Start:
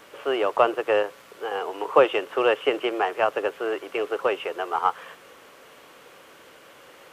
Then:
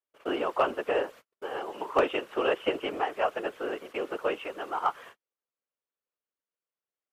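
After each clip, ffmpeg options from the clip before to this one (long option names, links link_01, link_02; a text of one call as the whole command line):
ffmpeg -i in.wav -af "afftfilt=real='hypot(re,im)*cos(2*PI*random(0))':imag='hypot(re,im)*sin(2*PI*random(1))':win_size=512:overlap=0.75,asoftclip=type=hard:threshold=-14dB,agate=range=-45dB:threshold=-46dB:ratio=16:detection=peak" out.wav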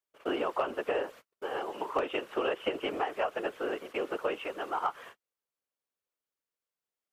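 ffmpeg -i in.wav -af "acompressor=threshold=-26dB:ratio=10" out.wav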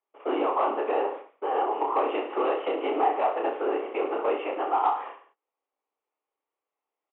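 ffmpeg -i in.wav -af "aresample=8000,asoftclip=type=tanh:threshold=-29dB,aresample=44100,highpass=frequency=290:width=0.5412,highpass=frequency=290:width=1.3066,equalizer=frequency=290:width_type=q:width=4:gain=5,equalizer=frequency=420:width_type=q:width=4:gain=4,equalizer=frequency=810:width_type=q:width=4:gain=10,equalizer=frequency=1100:width_type=q:width=4:gain=5,equalizer=frequency=1600:width_type=q:width=4:gain=-8,lowpass=frequency=2600:width=0.5412,lowpass=frequency=2600:width=1.3066,aecho=1:1:30|64.5|104.2|149.8|202.3:0.631|0.398|0.251|0.158|0.1,volume=4dB" out.wav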